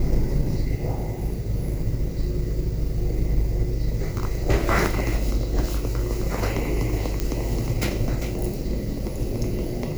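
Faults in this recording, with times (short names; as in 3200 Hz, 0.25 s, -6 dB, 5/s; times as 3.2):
7.2 pop -9 dBFS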